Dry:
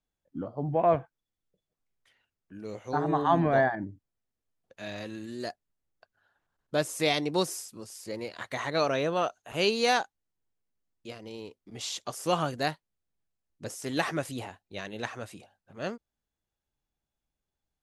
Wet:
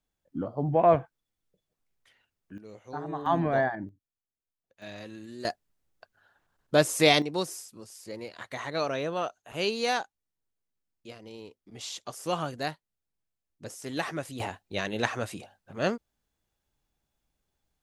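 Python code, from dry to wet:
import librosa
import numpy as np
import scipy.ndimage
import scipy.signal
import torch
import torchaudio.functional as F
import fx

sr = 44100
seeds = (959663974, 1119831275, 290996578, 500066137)

y = fx.gain(x, sr, db=fx.steps((0.0, 3.0), (2.58, -8.0), (3.26, -2.0), (3.89, -11.5), (4.82, -4.0), (5.45, 6.0), (7.22, -3.0), (14.4, 7.0)))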